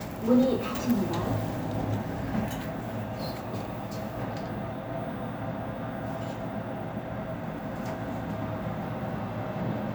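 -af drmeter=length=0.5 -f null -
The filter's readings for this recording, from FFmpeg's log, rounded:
Channel 1: DR: 8.2
Overall DR: 8.2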